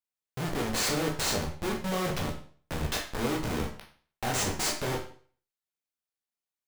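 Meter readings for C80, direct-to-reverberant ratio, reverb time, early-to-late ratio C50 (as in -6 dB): 11.5 dB, -1.0 dB, 0.45 s, 7.0 dB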